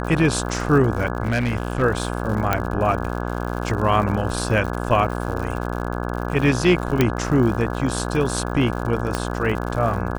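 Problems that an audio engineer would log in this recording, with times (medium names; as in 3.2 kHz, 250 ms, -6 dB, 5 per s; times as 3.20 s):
buzz 60 Hz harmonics 28 -26 dBFS
crackle 110 per s -29 dBFS
1.25–1.83 s: clipped -16.5 dBFS
2.53 s: pop -5 dBFS
7.01 s: pop -3 dBFS
9.15 s: pop -8 dBFS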